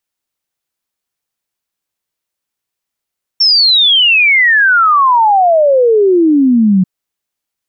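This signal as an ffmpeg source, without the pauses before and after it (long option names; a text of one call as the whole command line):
ffmpeg -f lavfi -i "aevalsrc='0.531*clip(min(t,3.44-t)/0.01,0,1)*sin(2*PI*5500*3.44/log(180/5500)*(exp(log(180/5500)*t/3.44)-1))':duration=3.44:sample_rate=44100" out.wav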